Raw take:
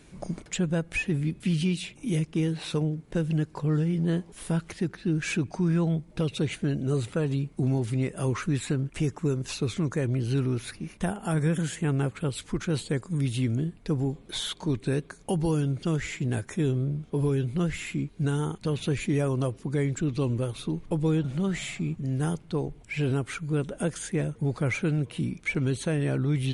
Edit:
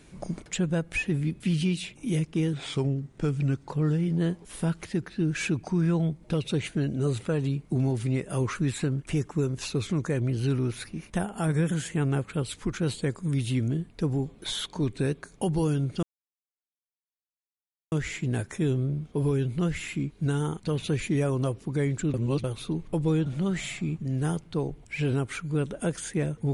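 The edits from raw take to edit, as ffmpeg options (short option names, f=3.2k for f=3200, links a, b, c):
-filter_complex "[0:a]asplit=6[a][b][c][d][e][f];[a]atrim=end=2.534[g];[b]atrim=start=2.53:end=3.57,asetpts=PTS-STARTPTS,asetrate=39249,aresample=44100[h];[c]atrim=start=3.566:end=15.9,asetpts=PTS-STARTPTS,afade=t=out:st=12.33:d=0.004:c=hsin,apad=pad_dur=1.89[i];[d]atrim=start=15.9:end=20.122,asetpts=PTS-STARTPTS,afade=t=in:d=0.004:c=hsin[j];[e]atrim=start=20.118:end=20.422,asetpts=PTS-STARTPTS,areverse[k];[f]atrim=start=20.418[l];[g][h]acrossfade=d=0.004:c1=hsin:c2=hsin[m];[i][j]concat=n=2:v=0:a=1[n];[m][n]acrossfade=d=0.004:c1=hsin:c2=hsin[o];[o][k]acrossfade=d=0.004:c1=hsin:c2=hsin[p];[p][l]acrossfade=d=0.004:c1=hsin:c2=hsin"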